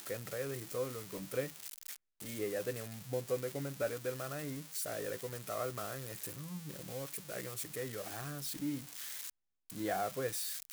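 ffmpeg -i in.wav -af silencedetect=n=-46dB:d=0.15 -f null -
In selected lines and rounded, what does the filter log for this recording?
silence_start: 1.96
silence_end: 2.20 | silence_duration: 0.24
silence_start: 9.30
silence_end: 9.70 | silence_duration: 0.40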